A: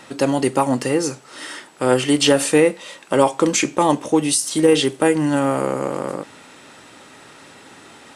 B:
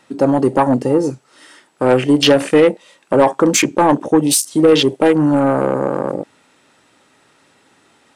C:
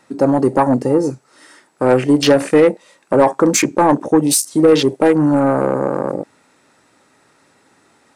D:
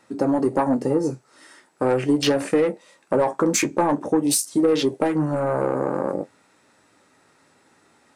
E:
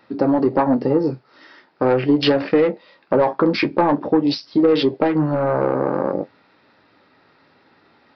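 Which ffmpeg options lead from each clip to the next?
ffmpeg -i in.wav -af "afwtdn=0.0562,acontrast=83,volume=-1dB" out.wav
ffmpeg -i in.wav -af "equalizer=frequency=3100:width_type=o:width=0.52:gain=-7.5" out.wav
ffmpeg -i in.wav -af "acompressor=threshold=-12dB:ratio=6,flanger=delay=9.2:depth=3.8:regen=-49:speed=0.45:shape=triangular" out.wav
ffmpeg -i in.wav -af "aresample=11025,aresample=44100,volume=3.5dB" out.wav

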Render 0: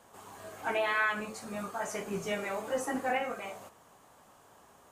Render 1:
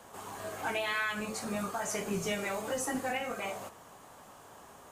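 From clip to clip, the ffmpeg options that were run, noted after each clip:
ffmpeg -i in.wav -filter_complex "[0:a]acrossover=split=170|3000[link_01][link_02][link_03];[link_02]acompressor=threshold=-39dB:ratio=6[link_04];[link_01][link_04][link_03]amix=inputs=3:normalize=0,volume=6dB" out.wav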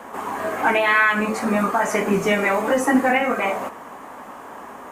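ffmpeg -i in.wav -af "equalizer=frequency=125:width_type=o:width=1:gain=-6,equalizer=frequency=250:width_type=o:width=1:gain=12,equalizer=frequency=500:width_type=o:width=1:gain=4,equalizer=frequency=1000:width_type=o:width=1:gain=8,equalizer=frequency=2000:width_type=o:width=1:gain=9,equalizer=frequency=4000:width_type=o:width=1:gain=-4,equalizer=frequency=8000:width_type=o:width=1:gain=-3,volume=7dB" out.wav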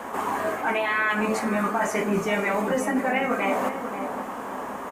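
ffmpeg -i in.wav -filter_complex "[0:a]areverse,acompressor=threshold=-25dB:ratio=6,areverse,asplit=2[link_01][link_02];[link_02]adelay=536,lowpass=frequency=830:poles=1,volume=-6dB,asplit=2[link_03][link_04];[link_04]adelay=536,lowpass=frequency=830:poles=1,volume=0.5,asplit=2[link_05][link_06];[link_06]adelay=536,lowpass=frequency=830:poles=1,volume=0.5,asplit=2[link_07][link_08];[link_08]adelay=536,lowpass=frequency=830:poles=1,volume=0.5,asplit=2[link_09][link_10];[link_10]adelay=536,lowpass=frequency=830:poles=1,volume=0.5,asplit=2[link_11][link_12];[link_12]adelay=536,lowpass=frequency=830:poles=1,volume=0.5[link_13];[link_01][link_03][link_05][link_07][link_09][link_11][link_13]amix=inputs=7:normalize=0,volume=3dB" out.wav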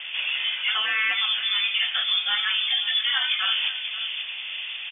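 ffmpeg -i in.wav -af "lowpass=frequency=3100:width_type=q:width=0.5098,lowpass=frequency=3100:width_type=q:width=0.6013,lowpass=frequency=3100:width_type=q:width=0.9,lowpass=frequency=3100:width_type=q:width=2.563,afreqshift=-3700" out.wav

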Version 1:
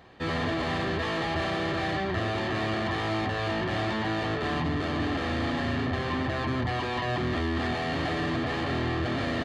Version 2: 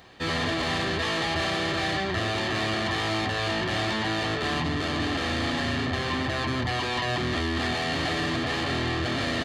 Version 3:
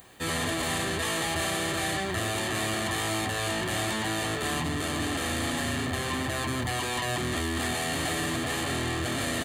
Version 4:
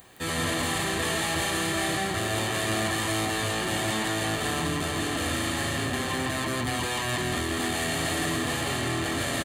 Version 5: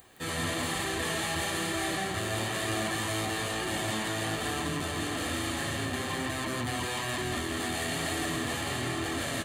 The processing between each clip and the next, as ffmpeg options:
ffmpeg -i in.wav -af "highshelf=frequency=2900:gain=12" out.wav
ffmpeg -i in.wav -af "aexciter=amount=7.8:drive=7:freq=7400,volume=-2.5dB" out.wav
ffmpeg -i in.wav -af "aecho=1:1:165:0.668" out.wav
ffmpeg -i in.wav -af "flanger=delay=2.4:depth=8.8:regen=-49:speed=1.1:shape=sinusoidal" out.wav

